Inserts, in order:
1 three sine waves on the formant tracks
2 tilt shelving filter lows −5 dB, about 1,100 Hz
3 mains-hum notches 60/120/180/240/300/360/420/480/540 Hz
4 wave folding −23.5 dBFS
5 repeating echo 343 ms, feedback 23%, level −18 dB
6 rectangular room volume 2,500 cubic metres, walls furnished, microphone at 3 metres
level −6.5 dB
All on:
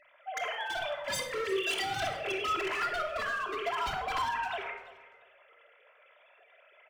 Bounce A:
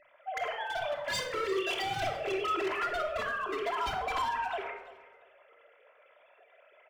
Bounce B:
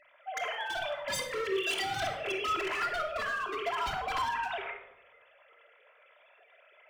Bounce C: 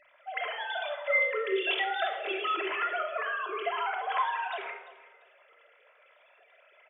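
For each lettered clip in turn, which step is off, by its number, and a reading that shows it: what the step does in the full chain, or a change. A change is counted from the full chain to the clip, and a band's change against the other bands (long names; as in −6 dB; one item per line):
2, 8 kHz band −4.0 dB
5, change in momentary loudness spread −1 LU
4, distortion level −3 dB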